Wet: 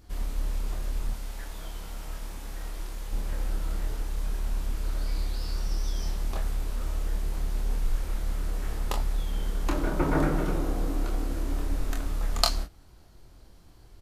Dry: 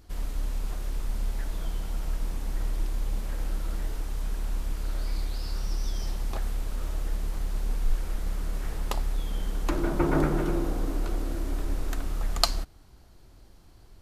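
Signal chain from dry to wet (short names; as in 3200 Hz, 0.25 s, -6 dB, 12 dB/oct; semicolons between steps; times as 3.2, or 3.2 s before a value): 1.13–3.13 low shelf 420 Hz -8 dB; early reflections 25 ms -4.5 dB, 42 ms -11.5 dB; gain -1 dB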